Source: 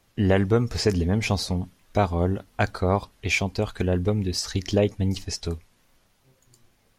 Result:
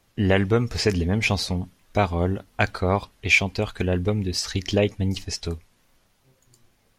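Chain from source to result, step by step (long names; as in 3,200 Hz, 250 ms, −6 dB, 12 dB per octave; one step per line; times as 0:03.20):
dynamic equaliser 2,500 Hz, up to +7 dB, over −42 dBFS, Q 1.1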